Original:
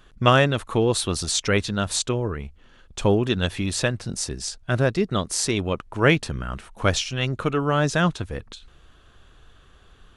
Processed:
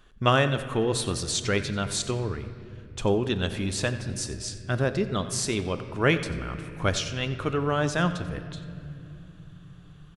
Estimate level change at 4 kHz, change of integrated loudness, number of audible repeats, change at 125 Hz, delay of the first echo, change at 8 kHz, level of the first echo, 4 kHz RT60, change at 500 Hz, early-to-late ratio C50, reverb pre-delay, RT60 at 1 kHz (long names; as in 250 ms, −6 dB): −4.0 dB, −4.0 dB, 1, −3.5 dB, 91 ms, −4.5 dB, −16.5 dB, 1.9 s, −4.0 dB, 10.5 dB, 3 ms, 2.3 s